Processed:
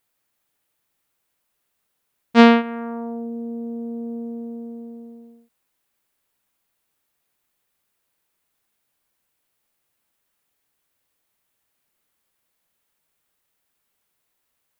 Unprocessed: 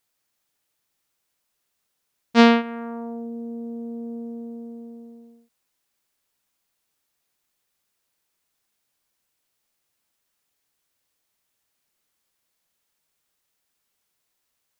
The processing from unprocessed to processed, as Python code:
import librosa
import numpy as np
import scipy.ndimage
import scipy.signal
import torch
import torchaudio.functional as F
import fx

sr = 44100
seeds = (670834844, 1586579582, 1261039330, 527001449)

y = fx.peak_eq(x, sr, hz=5600.0, db=-6.0, octaves=1.3)
y = y * librosa.db_to_amplitude(3.0)